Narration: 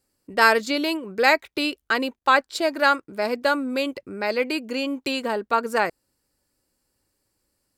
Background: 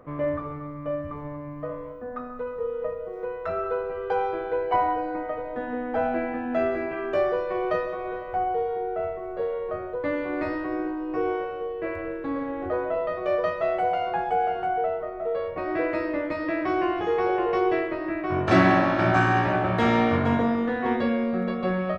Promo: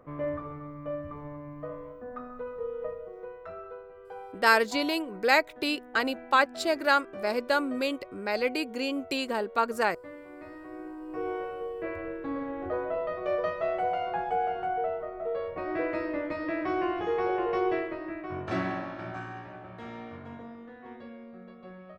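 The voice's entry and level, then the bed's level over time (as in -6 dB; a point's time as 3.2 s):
4.05 s, -4.5 dB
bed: 2.9 s -5.5 dB
3.89 s -17.5 dB
10.41 s -17.5 dB
11.47 s -4.5 dB
17.71 s -4.5 dB
19.48 s -21 dB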